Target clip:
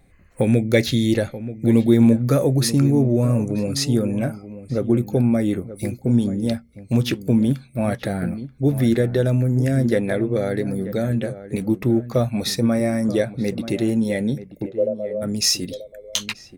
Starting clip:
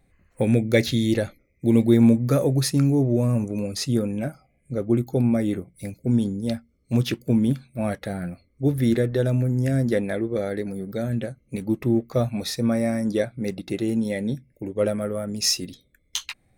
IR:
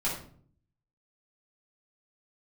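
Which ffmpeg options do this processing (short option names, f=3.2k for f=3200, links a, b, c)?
-filter_complex "[0:a]asplit=2[a][b];[b]acompressor=threshold=-29dB:ratio=6,volume=2dB[c];[a][c]amix=inputs=2:normalize=0,asplit=3[d][e][f];[d]afade=t=out:st=14.65:d=0.02[g];[e]asuperpass=centerf=530:order=4:qfactor=2.7,afade=t=in:st=14.65:d=0.02,afade=t=out:st=15.21:d=0.02[h];[f]afade=t=in:st=15.21:d=0.02[i];[g][h][i]amix=inputs=3:normalize=0,asplit=2[j][k];[k]adelay=932.9,volume=-13dB,highshelf=f=4k:g=-21[l];[j][l]amix=inputs=2:normalize=0"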